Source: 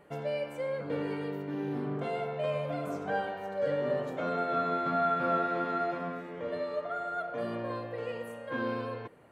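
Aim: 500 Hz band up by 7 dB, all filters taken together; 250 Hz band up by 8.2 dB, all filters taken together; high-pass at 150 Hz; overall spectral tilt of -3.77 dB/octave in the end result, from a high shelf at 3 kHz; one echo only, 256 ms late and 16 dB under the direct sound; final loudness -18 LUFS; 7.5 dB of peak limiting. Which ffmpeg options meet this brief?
-af "highpass=150,equalizer=f=250:t=o:g=8.5,equalizer=f=500:t=o:g=7,highshelf=f=3000:g=-8,alimiter=limit=0.0944:level=0:latency=1,aecho=1:1:256:0.158,volume=3.76"

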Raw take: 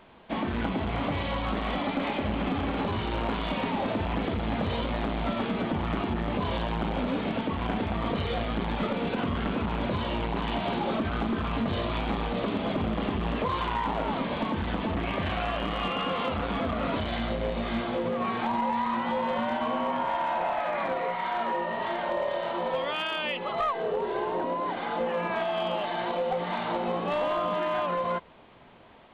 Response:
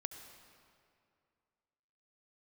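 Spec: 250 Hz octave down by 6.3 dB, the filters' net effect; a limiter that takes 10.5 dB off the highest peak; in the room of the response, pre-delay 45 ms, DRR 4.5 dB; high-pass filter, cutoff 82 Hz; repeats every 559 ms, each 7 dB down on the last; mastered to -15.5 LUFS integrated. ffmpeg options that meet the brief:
-filter_complex "[0:a]highpass=82,equalizer=f=250:t=o:g=-8,alimiter=level_in=1.58:limit=0.0631:level=0:latency=1,volume=0.631,aecho=1:1:559|1118|1677|2236|2795:0.447|0.201|0.0905|0.0407|0.0183,asplit=2[s0][s1];[1:a]atrim=start_sample=2205,adelay=45[s2];[s1][s2]afir=irnorm=-1:irlink=0,volume=0.75[s3];[s0][s3]amix=inputs=2:normalize=0,volume=8.41"

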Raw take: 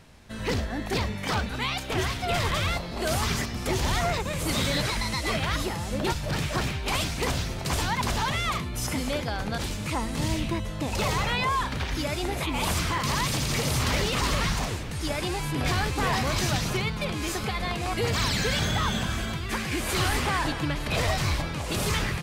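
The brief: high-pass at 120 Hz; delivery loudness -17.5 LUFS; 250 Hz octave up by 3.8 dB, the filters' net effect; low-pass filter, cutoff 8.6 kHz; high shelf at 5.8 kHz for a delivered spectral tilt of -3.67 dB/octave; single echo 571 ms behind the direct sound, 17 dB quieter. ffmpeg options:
-af "highpass=120,lowpass=8600,equalizer=f=250:t=o:g=5.5,highshelf=f=5800:g=6.5,aecho=1:1:571:0.141,volume=2.82"

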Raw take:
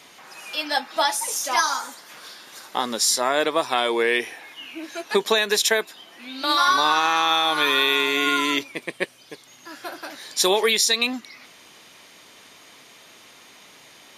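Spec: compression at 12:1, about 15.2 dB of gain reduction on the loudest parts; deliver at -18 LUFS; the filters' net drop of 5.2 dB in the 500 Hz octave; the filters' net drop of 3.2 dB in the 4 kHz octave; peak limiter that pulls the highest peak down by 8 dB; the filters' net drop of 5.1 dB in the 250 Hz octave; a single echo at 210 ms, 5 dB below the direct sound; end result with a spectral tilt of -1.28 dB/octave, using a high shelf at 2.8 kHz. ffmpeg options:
-af "equalizer=f=250:t=o:g=-4.5,equalizer=f=500:t=o:g=-5.5,highshelf=f=2800:g=6.5,equalizer=f=4000:t=o:g=-9,acompressor=threshold=0.0316:ratio=12,alimiter=limit=0.0631:level=0:latency=1,aecho=1:1:210:0.562,volume=6.68"

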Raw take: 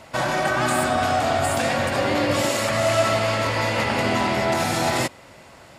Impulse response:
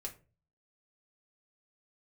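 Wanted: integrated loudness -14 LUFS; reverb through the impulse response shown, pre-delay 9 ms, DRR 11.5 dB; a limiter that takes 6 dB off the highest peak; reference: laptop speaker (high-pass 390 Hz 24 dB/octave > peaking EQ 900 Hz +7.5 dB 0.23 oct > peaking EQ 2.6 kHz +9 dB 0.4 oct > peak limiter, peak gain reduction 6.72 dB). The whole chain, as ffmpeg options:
-filter_complex "[0:a]alimiter=limit=0.188:level=0:latency=1,asplit=2[s0][s1];[1:a]atrim=start_sample=2205,adelay=9[s2];[s1][s2]afir=irnorm=-1:irlink=0,volume=0.335[s3];[s0][s3]amix=inputs=2:normalize=0,highpass=f=390:w=0.5412,highpass=f=390:w=1.3066,equalizer=f=900:t=o:w=0.23:g=7.5,equalizer=f=2600:t=o:w=0.4:g=9,volume=3.55,alimiter=limit=0.501:level=0:latency=1"

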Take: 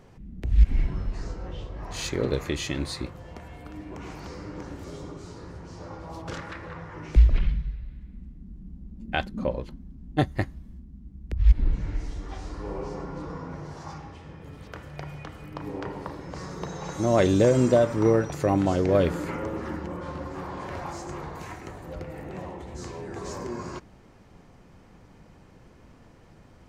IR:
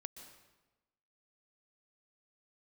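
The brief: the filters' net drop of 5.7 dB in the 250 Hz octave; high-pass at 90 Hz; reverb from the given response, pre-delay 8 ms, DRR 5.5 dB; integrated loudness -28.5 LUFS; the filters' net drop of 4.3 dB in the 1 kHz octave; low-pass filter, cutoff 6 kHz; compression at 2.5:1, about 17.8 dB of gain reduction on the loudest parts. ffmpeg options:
-filter_complex "[0:a]highpass=90,lowpass=6000,equalizer=f=250:t=o:g=-7.5,equalizer=f=1000:t=o:g=-5.5,acompressor=threshold=0.00447:ratio=2.5,asplit=2[s0][s1];[1:a]atrim=start_sample=2205,adelay=8[s2];[s1][s2]afir=irnorm=-1:irlink=0,volume=0.891[s3];[s0][s3]amix=inputs=2:normalize=0,volume=7.5"

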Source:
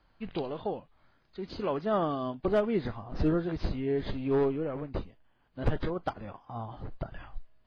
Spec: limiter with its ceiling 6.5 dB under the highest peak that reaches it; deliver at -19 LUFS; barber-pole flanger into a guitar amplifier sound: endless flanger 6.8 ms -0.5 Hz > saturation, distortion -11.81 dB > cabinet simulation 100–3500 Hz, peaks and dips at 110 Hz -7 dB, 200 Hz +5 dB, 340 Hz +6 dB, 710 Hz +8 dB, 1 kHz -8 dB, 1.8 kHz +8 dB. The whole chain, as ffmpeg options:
-filter_complex "[0:a]alimiter=level_in=1.19:limit=0.0631:level=0:latency=1,volume=0.841,asplit=2[s0][s1];[s1]adelay=6.8,afreqshift=-0.5[s2];[s0][s2]amix=inputs=2:normalize=1,asoftclip=threshold=0.02,highpass=100,equalizer=f=110:t=q:w=4:g=-7,equalizer=f=200:t=q:w=4:g=5,equalizer=f=340:t=q:w=4:g=6,equalizer=f=710:t=q:w=4:g=8,equalizer=f=1000:t=q:w=4:g=-8,equalizer=f=1800:t=q:w=4:g=8,lowpass=f=3500:w=0.5412,lowpass=f=3500:w=1.3066,volume=10.6"

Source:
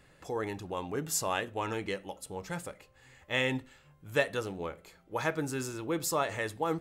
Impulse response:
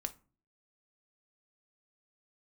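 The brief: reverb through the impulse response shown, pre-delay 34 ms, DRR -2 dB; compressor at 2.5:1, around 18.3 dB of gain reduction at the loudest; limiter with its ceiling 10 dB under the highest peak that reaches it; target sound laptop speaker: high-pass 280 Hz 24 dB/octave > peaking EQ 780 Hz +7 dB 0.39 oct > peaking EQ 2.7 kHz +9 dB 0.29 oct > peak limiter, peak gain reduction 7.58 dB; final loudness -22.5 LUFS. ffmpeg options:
-filter_complex "[0:a]acompressor=threshold=0.00316:ratio=2.5,alimiter=level_in=5.96:limit=0.0631:level=0:latency=1,volume=0.168,asplit=2[s0][s1];[1:a]atrim=start_sample=2205,adelay=34[s2];[s1][s2]afir=irnorm=-1:irlink=0,volume=1.41[s3];[s0][s3]amix=inputs=2:normalize=0,highpass=f=280:w=0.5412,highpass=f=280:w=1.3066,equalizer=f=780:t=o:w=0.39:g=7,equalizer=f=2700:t=o:w=0.29:g=9,volume=18.8,alimiter=limit=0.237:level=0:latency=1"

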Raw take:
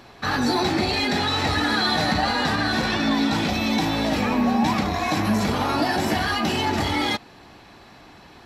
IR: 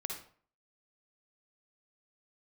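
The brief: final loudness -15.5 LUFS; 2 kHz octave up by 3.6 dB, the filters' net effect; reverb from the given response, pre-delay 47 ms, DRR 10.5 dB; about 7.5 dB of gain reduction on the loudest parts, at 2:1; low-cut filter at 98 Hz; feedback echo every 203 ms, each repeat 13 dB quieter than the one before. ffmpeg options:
-filter_complex "[0:a]highpass=98,equalizer=f=2000:t=o:g=4.5,acompressor=threshold=0.0282:ratio=2,aecho=1:1:203|406|609:0.224|0.0493|0.0108,asplit=2[s0][s1];[1:a]atrim=start_sample=2205,adelay=47[s2];[s1][s2]afir=irnorm=-1:irlink=0,volume=0.282[s3];[s0][s3]amix=inputs=2:normalize=0,volume=3.98"

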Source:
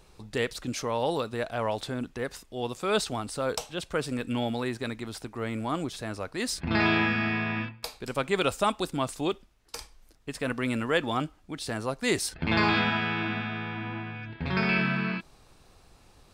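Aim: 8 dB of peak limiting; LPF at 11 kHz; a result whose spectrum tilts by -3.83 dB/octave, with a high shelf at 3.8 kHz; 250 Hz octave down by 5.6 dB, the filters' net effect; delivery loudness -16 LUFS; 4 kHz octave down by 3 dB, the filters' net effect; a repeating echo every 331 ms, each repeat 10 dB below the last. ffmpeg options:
-af "lowpass=11000,equalizer=f=250:t=o:g=-7.5,highshelf=f=3800:g=6,equalizer=f=4000:t=o:g=-7.5,alimiter=limit=0.0944:level=0:latency=1,aecho=1:1:331|662|993|1324:0.316|0.101|0.0324|0.0104,volume=6.68"

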